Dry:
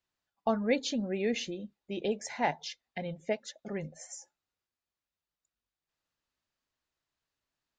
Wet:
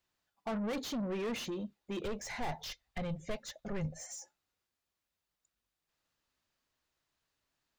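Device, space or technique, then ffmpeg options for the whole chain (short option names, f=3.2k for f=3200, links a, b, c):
saturation between pre-emphasis and de-emphasis: -filter_complex "[0:a]highshelf=f=2.4k:g=9.5,asoftclip=type=tanh:threshold=-37dB,highshelf=f=2.4k:g=-9.5,asplit=3[a][b][c];[a]afade=t=out:st=2.03:d=0.02[d];[b]asubboost=boost=8:cutoff=100,afade=t=in:st=2.03:d=0.02,afade=t=out:st=4.01:d=0.02[e];[c]afade=t=in:st=4.01:d=0.02[f];[d][e][f]amix=inputs=3:normalize=0,volume=4dB"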